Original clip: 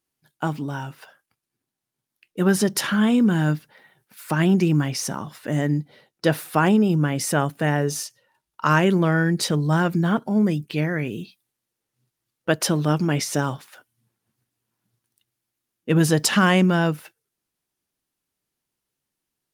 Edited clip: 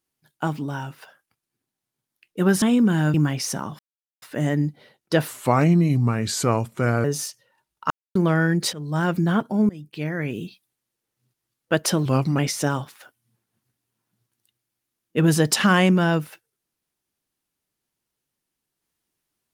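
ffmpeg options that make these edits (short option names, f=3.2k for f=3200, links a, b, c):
-filter_complex "[0:a]asplit=12[a][b][c][d][e][f][g][h][i][j][k][l];[a]atrim=end=2.622[m];[b]atrim=start=3.028:end=3.552[n];[c]atrim=start=4.688:end=5.34,asetpts=PTS-STARTPTS,afade=t=out:st=0.648:d=0.004:c=hsin,apad=pad_dur=0.43[o];[d]atrim=start=5.34:end=6.404,asetpts=PTS-STARTPTS,afade=t=in:d=0.004:c=hsin[p];[e]atrim=start=6.4:end=7.81,asetpts=PTS-STARTPTS,asetrate=35280,aresample=44100,atrim=end_sample=77726,asetpts=PTS-STARTPTS[q];[f]atrim=start=7.806:end=8.67,asetpts=PTS-STARTPTS,afade=t=out:st=0.86:d=0.004:c=hsin[r];[g]atrim=start=8.67:end=8.92,asetpts=PTS-STARTPTS,volume=0[s];[h]atrim=start=8.92:end=9.5,asetpts=PTS-STARTPTS,afade=t=in:d=0.004:c=hsin,afade=t=out:st=0.576:d=0.004:c=hsin:silence=0.11885[t];[i]atrim=start=9.5:end=10.46,asetpts=PTS-STARTPTS,afade=t=in:d=0.4:silence=0.11885,afade=t=out:st=0.956:d=0.004:c=hsin:silence=0.0794328[u];[j]atrim=start=10.46:end=12.824,asetpts=PTS-STARTPTS,afade=t=in:d=0.64:silence=0.0794328[v];[k]atrim=start=12.82:end=13.11,asetpts=PTS-STARTPTS,asetrate=38367,aresample=44100[w];[l]atrim=start=13.106[x];[m][n]acrossfade=d=0.004:c1=hsin:c2=hsin[y];[o][p]concat=n=2:v=0:a=1[z];[y][z]acrossfade=d=0.004:c1=hsin:c2=hsin[aa];[aa][q]acrossfade=d=0.004:c1=hsin:c2=hsin[ab];[r][s][t][u][v]concat=n=5:v=0:a=1[ac];[ab][ac]acrossfade=d=0.004:c1=hsin:c2=hsin[ad];[ad][w]acrossfade=d=0.004:c1=hsin:c2=hsin[ae];[ae][x]acrossfade=d=0.004:c1=hsin:c2=hsin"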